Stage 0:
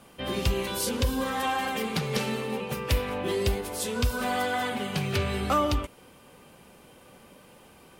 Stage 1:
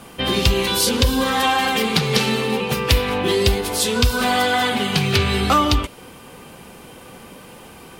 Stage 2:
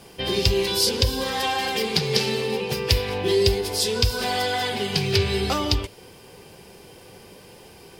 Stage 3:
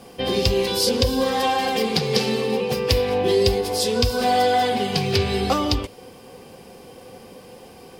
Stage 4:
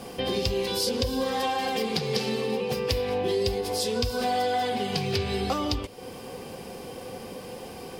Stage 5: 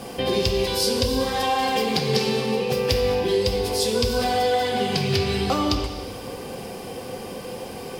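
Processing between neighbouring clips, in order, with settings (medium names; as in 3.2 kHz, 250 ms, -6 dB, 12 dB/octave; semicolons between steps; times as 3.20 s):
band-stop 580 Hz, Q 12; dynamic bell 4 kHz, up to +6 dB, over -49 dBFS, Q 1.2; in parallel at -0.5 dB: compression, threshold -33 dBFS, peak gain reduction 13 dB; on the sum: trim +6.5 dB
graphic EQ with 31 bands 100 Hz +6 dB, 250 Hz -7 dB, 400 Hz +7 dB, 1.25 kHz -9 dB, 5 kHz +10 dB; crackle 510 per s -44 dBFS; trim -6 dB
small resonant body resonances 250/510/730/1100 Hz, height 10 dB, ringing for 40 ms; trim -1 dB
compression 2:1, threshold -37 dBFS, peak gain reduction 12.5 dB; trim +4 dB
plate-style reverb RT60 1.8 s, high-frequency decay 0.95×, pre-delay 0 ms, DRR 4.5 dB; trim +4 dB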